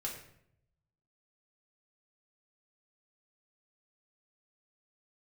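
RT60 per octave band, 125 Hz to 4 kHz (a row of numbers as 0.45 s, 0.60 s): 1.3 s, 0.90 s, 0.80 s, 0.65 s, 0.65 s, 0.50 s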